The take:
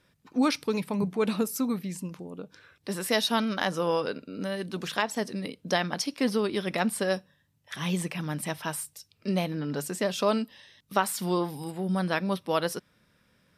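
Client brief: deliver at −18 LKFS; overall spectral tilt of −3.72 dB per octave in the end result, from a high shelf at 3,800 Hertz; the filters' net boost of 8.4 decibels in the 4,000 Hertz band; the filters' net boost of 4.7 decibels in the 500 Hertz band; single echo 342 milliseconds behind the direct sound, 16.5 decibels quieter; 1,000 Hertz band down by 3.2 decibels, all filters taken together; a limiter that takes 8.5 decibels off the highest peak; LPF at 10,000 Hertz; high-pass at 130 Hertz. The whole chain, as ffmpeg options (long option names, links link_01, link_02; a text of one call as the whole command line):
ffmpeg -i in.wav -af "highpass=130,lowpass=10000,equalizer=frequency=500:width_type=o:gain=7.5,equalizer=frequency=1000:width_type=o:gain=-8,highshelf=frequency=3800:gain=6,equalizer=frequency=4000:width_type=o:gain=7,alimiter=limit=-14dB:level=0:latency=1,aecho=1:1:342:0.15,volume=9.5dB" out.wav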